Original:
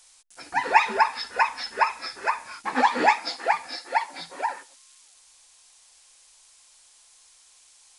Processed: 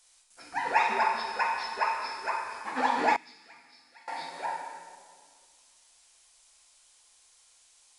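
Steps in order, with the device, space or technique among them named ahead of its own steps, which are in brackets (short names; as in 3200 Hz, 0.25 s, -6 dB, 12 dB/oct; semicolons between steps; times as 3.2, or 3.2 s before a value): stairwell (reverb RT60 1.8 s, pre-delay 7 ms, DRR -1 dB); 3.16–4.08 passive tone stack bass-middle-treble 6-0-2; gain -8.5 dB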